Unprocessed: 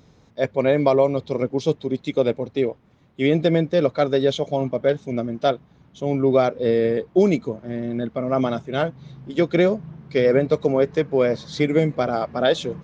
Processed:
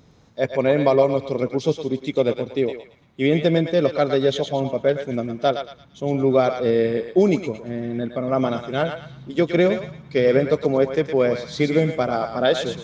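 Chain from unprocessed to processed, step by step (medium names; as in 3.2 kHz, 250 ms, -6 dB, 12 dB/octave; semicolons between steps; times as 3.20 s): thinning echo 113 ms, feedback 38%, high-pass 930 Hz, level -5 dB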